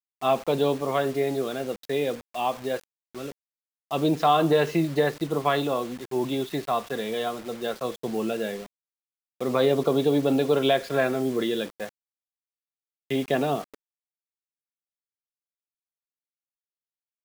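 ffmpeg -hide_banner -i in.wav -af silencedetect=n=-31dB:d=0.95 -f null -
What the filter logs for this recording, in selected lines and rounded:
silence_start: 11.87
silence_end: 13.11 | silence_duration: 1.23
silence_start: 13.62
silence_end: 17.24 | silence_duration: 3.62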